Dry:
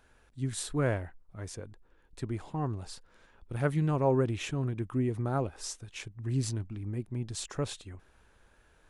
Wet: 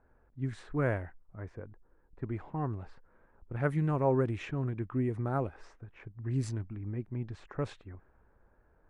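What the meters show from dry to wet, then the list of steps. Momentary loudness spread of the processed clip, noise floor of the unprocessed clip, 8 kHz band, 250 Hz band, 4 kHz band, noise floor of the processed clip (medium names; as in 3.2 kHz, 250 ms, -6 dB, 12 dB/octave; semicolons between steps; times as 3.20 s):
20 LU, -64 dBFS, under -15 dB, -1.5 dB, under -10 dB, -67 dBFS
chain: resonant high shelf 2.6 kHz -6.5 dB, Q 1.5; level-controlled noise filter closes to 940 Hz, open at -25 dBFS; trim -1.5 dB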